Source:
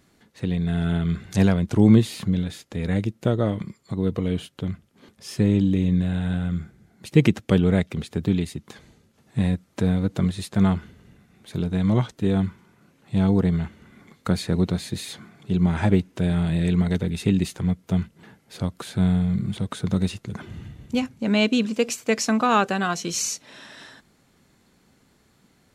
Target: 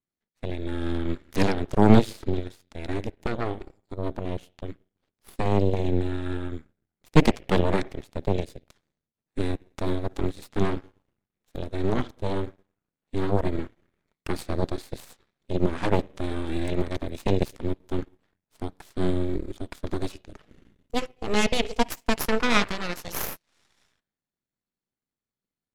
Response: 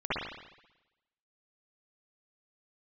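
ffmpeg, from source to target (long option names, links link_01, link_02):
-filter_complex "[0:a]adynamicequalizer=threshold=0.00355:dfrequency=5000:dqfactor=3.4:tfrequency=5000:tqfactor=3.4:attack=5:release=100:ratio=0.375:range=2:mode=boostabove:tftype=bell,asplit=2[link_01][link_02];[1:a]atrim=start_sample=2205[link_03];[link_02][link_03]afir=irnorm=-1:irlink=0,volume=-22.5dB[link_04];[link_01][link_04]amix=inputs=2:normalize=0,aeval=exprs='0.75*(cos(1*acos(clip(val(0)/0.75,-1,1)))-cos(1*PI/2))+0.266*(cos(2*acos(clip(val(0)/0.75,-1,1)))-cos(2*PI/2))+0.00841*(cos(3*acos(clip(val(0)/0.75,-1,1)))-cos(3*PI/2))+0.188*(cos(6*acos(clip(val(0)/0.75,-1,1)))-cos(6*PI/2))+0.106*(cos(7*acos(clip(val(0)/0.75,-1,1)))-cos(7*PI/2))':channel_layout=same,volume=-2dB"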